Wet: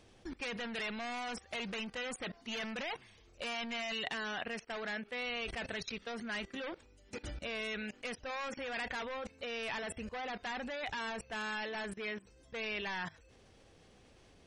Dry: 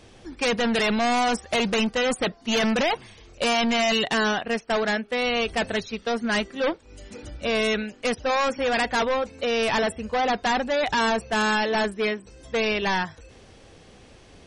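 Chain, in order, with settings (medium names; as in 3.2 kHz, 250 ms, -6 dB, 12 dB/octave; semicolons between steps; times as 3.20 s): level held to a coarse grid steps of 20 dB; dynamic bell 2.2 kHz, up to +7 dB, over -57 dBFS, Q 0.78; trim -2 dB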